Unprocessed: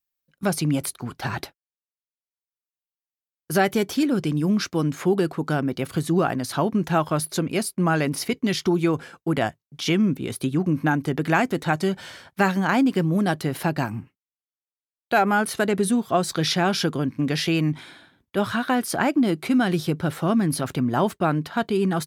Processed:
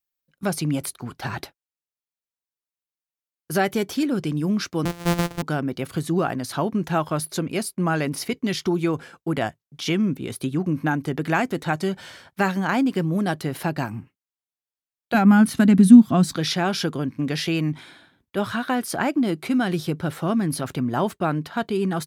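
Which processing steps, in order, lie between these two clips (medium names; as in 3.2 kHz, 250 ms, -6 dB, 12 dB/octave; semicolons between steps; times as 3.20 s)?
4.85–5.43 s: sorted samples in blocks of 256 samples; 15.14–16.37 s: resonant low shelf 330 Hz +8.5 dB, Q 3; trim -1.5 dB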